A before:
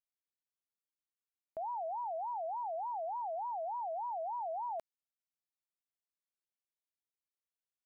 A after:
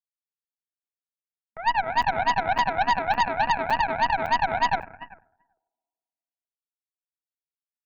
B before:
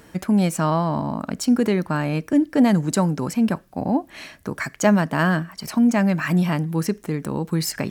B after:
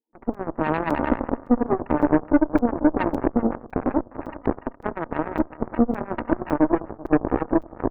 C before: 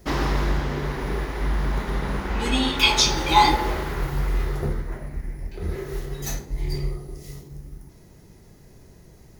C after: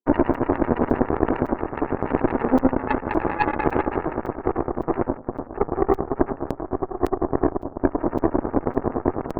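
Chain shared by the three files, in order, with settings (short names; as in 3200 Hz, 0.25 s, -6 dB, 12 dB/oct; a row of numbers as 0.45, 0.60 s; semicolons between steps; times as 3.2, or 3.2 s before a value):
recorder AGC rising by 78 dB/s; FFT band-pass 220–1000 Hz; gate with hold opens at -35 dBFS; bell 630 Hz -13 dB 0.58 oct; in parallel at -2.5 dB: compressor, threshold -25 dBFS; on the sum: limiter -14.5 dBFS; harmonic tremolo 9.8 Hz, depth 100%, crossover 600 Hz; feedback echo 0.388 s, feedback 16%, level -10.5 dB; shoebox room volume 1900 m³, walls mixed, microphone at 0.56 m; added harmonics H 3 -22 dB, 4 -12 dB, 5 -17 dB, 7 -14 dB, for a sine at -11.5 dBFS; crackling interface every 0.56 s, samples 256, zero, from 0.34; match loudness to -24 LUFS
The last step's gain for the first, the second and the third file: -1.0, +5.0, +7.5 dB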